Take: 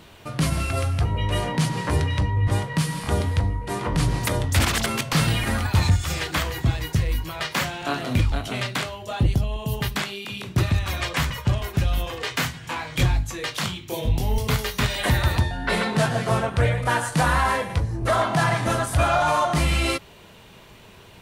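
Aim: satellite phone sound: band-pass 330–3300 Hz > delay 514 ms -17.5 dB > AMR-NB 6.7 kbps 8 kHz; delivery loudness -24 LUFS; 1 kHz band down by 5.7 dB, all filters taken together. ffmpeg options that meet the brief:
-af "highpass=330,lowpass=3300,equalizer=f=1000:t=o:g=-7.5,aecho=1:1:514:0.133,volume=2.99" -ar 8000 -c:a libopencore_amrnb -b:a 6700

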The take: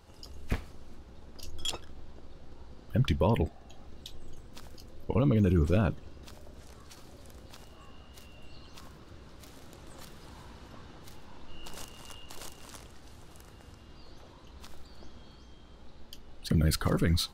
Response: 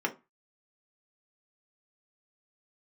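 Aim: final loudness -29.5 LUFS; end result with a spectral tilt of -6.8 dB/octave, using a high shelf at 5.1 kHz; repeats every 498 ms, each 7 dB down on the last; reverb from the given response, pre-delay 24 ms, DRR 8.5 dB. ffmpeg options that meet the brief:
-filter_complex "[0:a]highshelf=f=5100:g=-9,aecho=1:1:498|996|1494|1992|2490:0.447|0.201|0.0905|0.0407|0.0183,asplit=2[s0][s1];[1:a]atrim=start_sample=2205,adelay=24[s2];[s1][s2]afir=irnorm=-1:irlink=0,volume=0.158[s3];[s0][s3]amix=inputs=2:normalize=0,volume=1.12"

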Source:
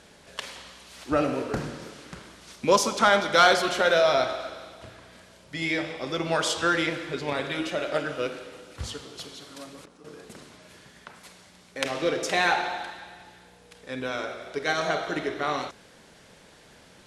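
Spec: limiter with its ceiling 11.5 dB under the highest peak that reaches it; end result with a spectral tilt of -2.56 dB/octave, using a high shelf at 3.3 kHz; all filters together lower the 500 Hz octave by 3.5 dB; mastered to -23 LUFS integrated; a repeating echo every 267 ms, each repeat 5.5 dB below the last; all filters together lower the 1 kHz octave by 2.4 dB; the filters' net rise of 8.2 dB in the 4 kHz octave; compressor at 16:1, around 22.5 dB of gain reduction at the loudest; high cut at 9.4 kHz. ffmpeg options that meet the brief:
-af "lowpass=9400,equalizer=f=500:t=o:g=-3.5,equalizer=f=1000:t=o:g=-3.5,highshelf=f=3300:g=4,equalizer=f=4000:t=o:g=7.5,acompressor=threshold=0.02:ratio=16,alimiter=level_in=1.78:limit=0.0631:level=0:latency=1,volume=0.562,aecho=1:1:267|534|801|1068|1335|1602|1869:0.531|0.281|0.149|0.079|0.0419|0.0222|0.0118,volume=6.31"

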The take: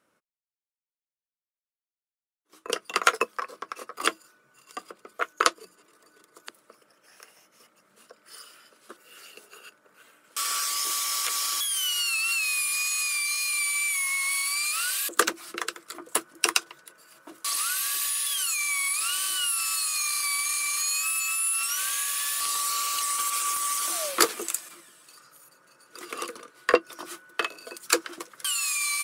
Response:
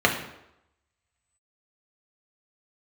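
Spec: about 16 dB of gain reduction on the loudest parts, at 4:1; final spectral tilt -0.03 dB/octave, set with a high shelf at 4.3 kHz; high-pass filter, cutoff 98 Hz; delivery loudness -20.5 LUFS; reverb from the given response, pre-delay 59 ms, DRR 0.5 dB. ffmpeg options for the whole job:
-filter_complex "[0:a]highpass=98,highshelf=f=4300:g=-7,acompressor=threshold=0.0178:ratio=4,asplit=2[s0][s1];[1:a]atrim=start_sample=2205,adelay=59[s2];[s1][s2]afir=irnorm=-1:irlink=0,volume=0.119[s3];[s0][s3]amix=inputs=2:normalize=0,volume=5.01"

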